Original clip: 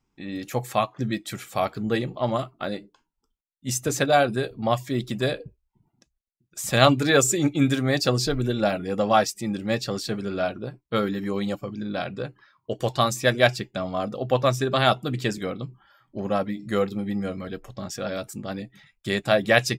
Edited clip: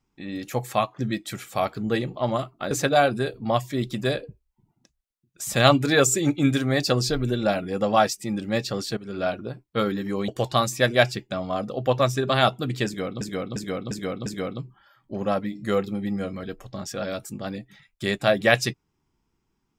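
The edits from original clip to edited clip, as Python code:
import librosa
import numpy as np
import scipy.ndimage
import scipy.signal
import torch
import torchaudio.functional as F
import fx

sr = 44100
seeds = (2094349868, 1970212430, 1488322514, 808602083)

y = fx.edit(x, sr, fx.cut(start_s=2.71, length_s=1.17),
    fx.fade_in_from(start_s=10.14, length_s=0.26, floor_db=-15.5),
    fx.cut(start_s=11.45, length_s=1.27),
    fx.repeat(start_s=15.3, length_s=0.35, count=5), tone=tone)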